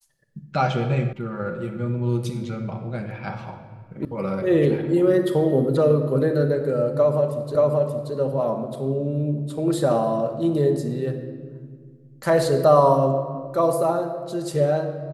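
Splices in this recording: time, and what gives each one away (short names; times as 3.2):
1.13 sound cut off
4.05 sound cut off
7.55 repeat of the last 0.58 s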